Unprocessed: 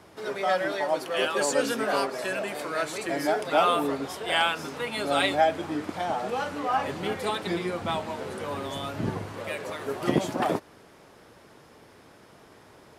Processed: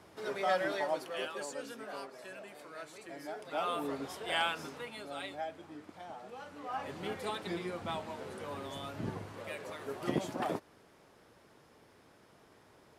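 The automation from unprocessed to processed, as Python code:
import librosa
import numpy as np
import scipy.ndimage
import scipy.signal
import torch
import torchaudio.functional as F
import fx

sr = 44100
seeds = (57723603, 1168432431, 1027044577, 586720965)

y = fx.gain(x, sr, db=fx.line((0.79, -5.5), (1.57, -17.5), (3.3, -17.5), (3.99, -8.0), (4.65, -8.0), (5.13, -18.0), (6.38, -18.0), (7.03, -9.0)))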